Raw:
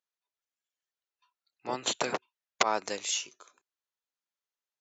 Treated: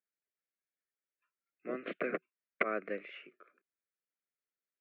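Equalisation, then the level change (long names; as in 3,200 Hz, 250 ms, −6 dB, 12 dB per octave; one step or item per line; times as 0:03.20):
Chebyshev band-pass filter 170–2,300 Hz, order 4
Butterworth band-reject 890 Hz, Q 1.3
high-frequency loss of the air 130 metres
0.0 dB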